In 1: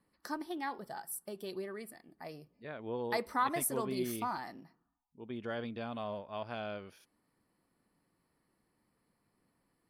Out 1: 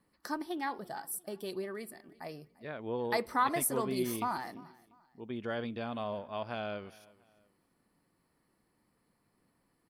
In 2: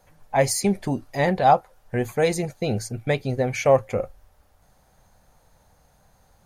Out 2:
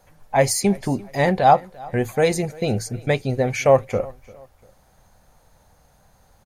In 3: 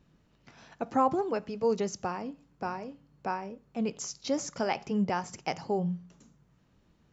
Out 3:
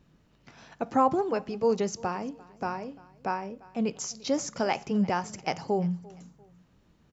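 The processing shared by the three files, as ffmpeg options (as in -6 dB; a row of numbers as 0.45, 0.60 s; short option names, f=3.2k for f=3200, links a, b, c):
-af "aecho=1:1:345|690:0.075|0.027,volume=2.5dB"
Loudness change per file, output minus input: +2.5, +2.5, +2.5 LU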